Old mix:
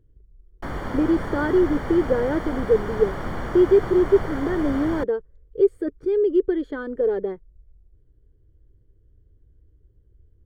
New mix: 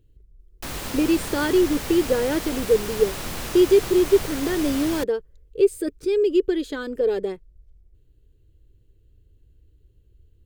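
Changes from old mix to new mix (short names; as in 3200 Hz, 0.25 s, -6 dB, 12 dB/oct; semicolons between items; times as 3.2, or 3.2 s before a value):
background -4.0 dB; master: remove polynomial smoothing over 41 samples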